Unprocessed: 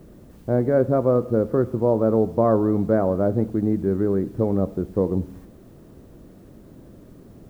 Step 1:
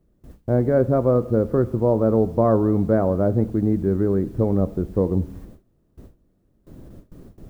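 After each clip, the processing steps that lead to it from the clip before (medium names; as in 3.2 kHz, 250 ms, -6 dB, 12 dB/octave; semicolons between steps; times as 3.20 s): gate with hold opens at -35 dBFS; bass shelf 73 Hz +12 dB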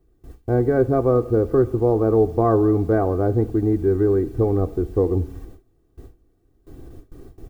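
comb 2.6 ms, depth 70%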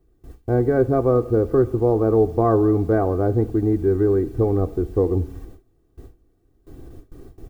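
no audible change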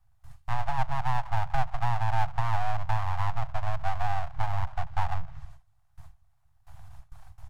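low-pass that closes with the level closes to 460 Hz, closed at -15 dBFS; full-wave rectifier; inverse Chebyshev band-stop 200–500 Hz, stop band 40 dB; trim -2 dB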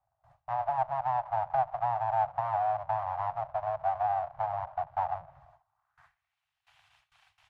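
band-pass sweep 610 Hz -> 2.8 kHz, 5.44–6.38 s; trim +7.5 dB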